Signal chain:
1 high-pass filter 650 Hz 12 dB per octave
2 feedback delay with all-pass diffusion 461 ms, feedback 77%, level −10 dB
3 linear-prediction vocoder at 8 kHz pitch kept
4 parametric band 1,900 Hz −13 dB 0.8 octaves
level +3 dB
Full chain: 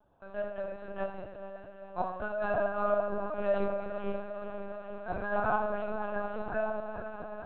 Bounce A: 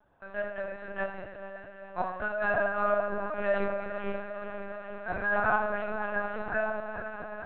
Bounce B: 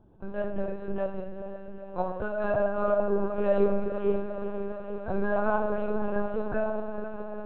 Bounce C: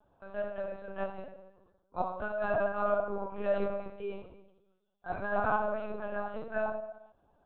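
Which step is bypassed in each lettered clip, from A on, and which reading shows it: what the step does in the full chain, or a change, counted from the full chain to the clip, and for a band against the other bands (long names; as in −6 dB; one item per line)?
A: 4, 2 kHz band +8.0 dB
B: 1, 2 kHz band −6.0 dB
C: 2, change in momentary loudness spread +2 LU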